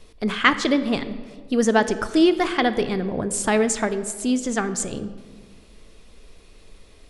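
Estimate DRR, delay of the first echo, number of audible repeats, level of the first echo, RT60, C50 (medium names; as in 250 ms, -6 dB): 11.0 dB, no echo, no echo, no echo, 1.6 s, 13.0 dB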